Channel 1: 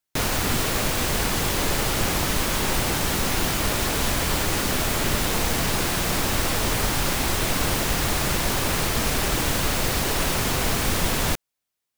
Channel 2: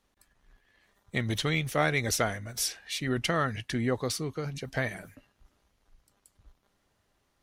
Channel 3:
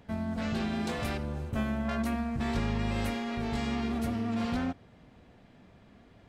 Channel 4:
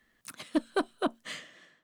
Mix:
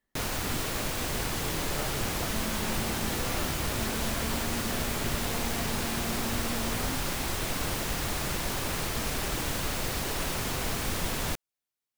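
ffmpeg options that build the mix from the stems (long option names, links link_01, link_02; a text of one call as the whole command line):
ffmpeg -i stem1.wav -i stem2.wav -i stem3.wav -i stem4.wav -filter_complex "[0:a]volume=-8dB[link_01];[1:a]lowpass=1300,volume=-12dB[link_02];[2:a]acompressor=threshold=-36dB:ratio=6,adelay=2250,volume=1.5dB[link_03];[3:a]volume=-17dB[link_04];[link_01][link_02][link_03][link_04]amix=inputs=4:normalize=0" out.wav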